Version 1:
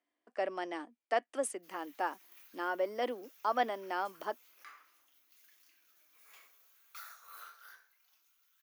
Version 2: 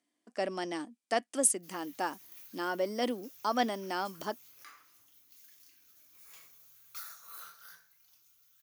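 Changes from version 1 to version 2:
background: add high shelf 3400 Hz -8 dB; master: remove three-band isolator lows -20 dB, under 330 Hz, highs -15 dB, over 2900 Hz

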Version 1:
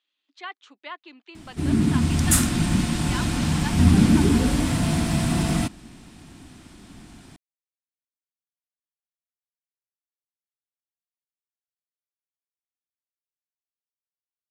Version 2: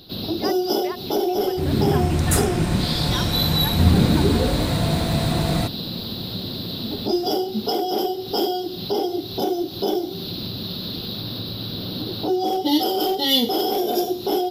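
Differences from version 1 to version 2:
first sound: unmuted; master: add graphic EQ 125/250/500/4000/8000 Hz +4/-7/+11/-4/-4 dB

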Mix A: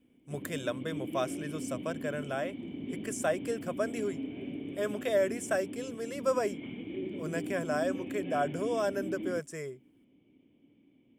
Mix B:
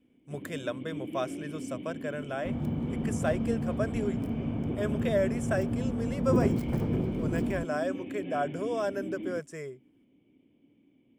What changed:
second sound: unmuted; master: add high shelf 6900 Hz -8 dB

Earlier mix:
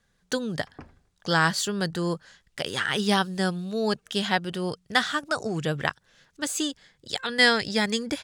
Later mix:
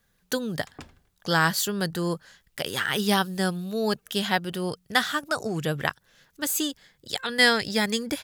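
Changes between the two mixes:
background: remove running mean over 12 samples; master: remove polynomial smoothing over 9 samples

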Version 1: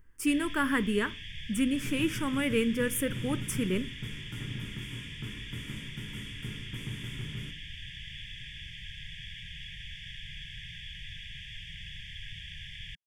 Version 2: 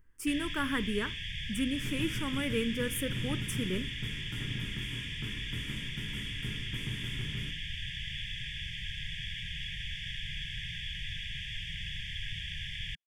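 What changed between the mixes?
speech -4.5 dB; first sound +4.5 dB

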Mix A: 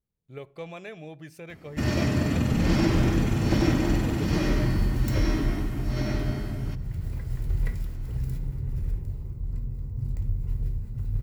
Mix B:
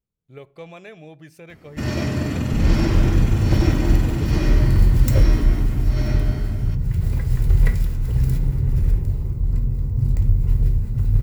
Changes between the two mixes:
first sound: send +10.5 dB; second sound +11.0 dB

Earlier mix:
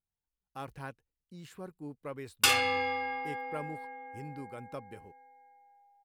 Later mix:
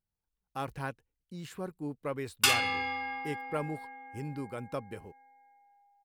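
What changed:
speech +5.5 dB; background: add bell 540 Hz -13.5 dB 0.46 oct

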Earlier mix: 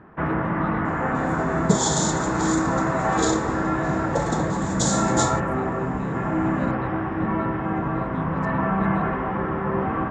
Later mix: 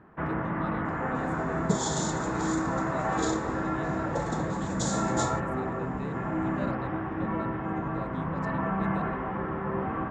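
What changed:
first sound -6.5 dB; second sound -7.5 dB; master: add high shelf 11000 Hz -7.5 dB

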